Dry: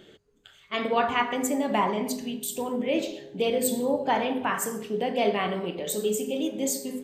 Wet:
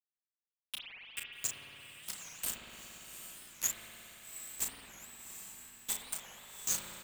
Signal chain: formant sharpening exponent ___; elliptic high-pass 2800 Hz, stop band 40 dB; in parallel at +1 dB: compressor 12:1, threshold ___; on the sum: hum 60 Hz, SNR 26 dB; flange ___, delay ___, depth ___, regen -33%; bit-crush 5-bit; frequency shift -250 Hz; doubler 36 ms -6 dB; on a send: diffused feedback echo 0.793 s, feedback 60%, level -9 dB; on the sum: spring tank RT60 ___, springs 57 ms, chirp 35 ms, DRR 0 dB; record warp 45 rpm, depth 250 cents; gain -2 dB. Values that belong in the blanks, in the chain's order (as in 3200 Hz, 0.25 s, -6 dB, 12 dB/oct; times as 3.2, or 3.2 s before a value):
1.5, -43 dBFS, 0.74 Hz, 5.3 ms, 1.9 ms, 3.7 s